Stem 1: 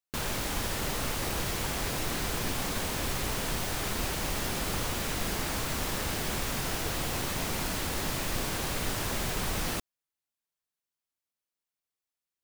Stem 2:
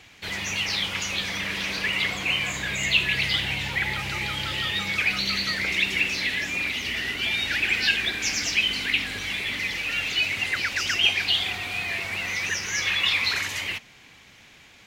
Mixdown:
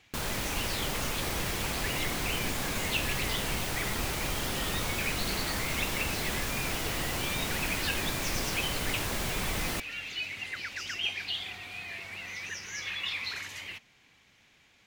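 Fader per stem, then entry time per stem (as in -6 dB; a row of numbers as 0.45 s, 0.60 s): -1.0 dB, -11.5 dB; 0.00 s, 0.00 s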